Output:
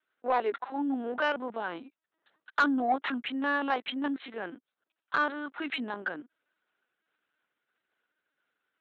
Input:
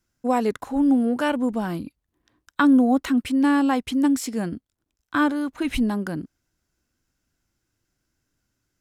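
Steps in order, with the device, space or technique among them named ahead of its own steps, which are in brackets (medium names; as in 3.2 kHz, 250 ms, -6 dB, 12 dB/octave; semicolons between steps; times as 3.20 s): talking toy (LPC vocoder at 8 kHz pitch kept; high-pass 550 Hz 12 dB/octave; peaking EQ 1.5 kHz +4 dB 0.46 oct; saturation -15.5 dBFS, distortion -17 dB)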